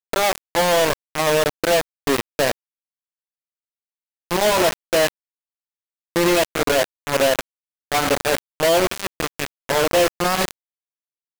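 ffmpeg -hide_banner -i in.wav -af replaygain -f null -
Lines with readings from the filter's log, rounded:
track_gain = +0.5 dB
track_peak = 0.364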